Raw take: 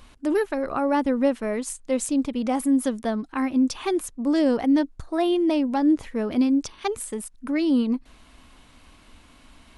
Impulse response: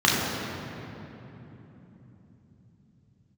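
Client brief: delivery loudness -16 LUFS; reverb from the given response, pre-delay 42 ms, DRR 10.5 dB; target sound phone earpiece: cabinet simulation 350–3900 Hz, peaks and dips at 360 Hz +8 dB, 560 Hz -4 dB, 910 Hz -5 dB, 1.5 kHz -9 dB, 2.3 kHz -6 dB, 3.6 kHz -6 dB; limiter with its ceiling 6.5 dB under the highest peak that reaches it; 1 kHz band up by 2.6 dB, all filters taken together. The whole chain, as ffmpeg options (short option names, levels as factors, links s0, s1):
-filter_complex "[0:a]equalizer=f=1000:t=o:g=8.5,alimiter=limit=0.188:level=0:latency=1,asplit=2[s0][s1];[1:a]atrim=start_sample=2205,adelay=42[s2];[s1][s2]afir=irnorm=-1:irlink=0,volume=0.0299[s3];[s0][s3]amix=inputs=2:normalize=0,highpass=350,equalizer=f=360:t=q:w=4:g=8,equalizer=f=560:t=q:w=4:g=-4,equalizer=f=910:t=q:w=4:g=-5,equalizer=f=1500:t=q:w=4:g=-9,equalizer=f=2300:t=q:w=4:g=-6,equalizer=f=3600:t=q:w=4:g=-6,lowpass=f=3900:w=0.5412,lowpass=f=3900:w=1.3066,volume=2.99"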